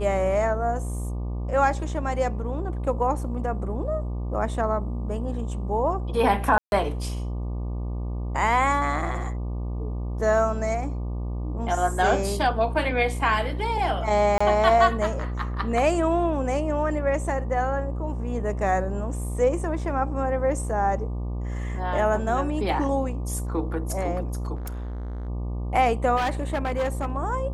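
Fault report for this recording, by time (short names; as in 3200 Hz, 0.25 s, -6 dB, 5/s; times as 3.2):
buzz 60 Hz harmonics 20 -29 dBFS
6.58–6.72 gap 0.141 s
14.38–14.4 gap 25 ms
24.55–25.29 clipped -30 dBFS
26.16–27.17 clipped -21 dBFS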